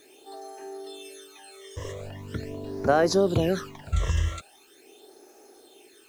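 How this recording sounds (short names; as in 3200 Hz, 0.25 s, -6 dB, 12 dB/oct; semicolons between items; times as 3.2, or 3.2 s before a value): phasing stages 12, 0.42 Hz, lowest notch 240–3300 Hz; a quantiser's noise floor 10-bit, dither none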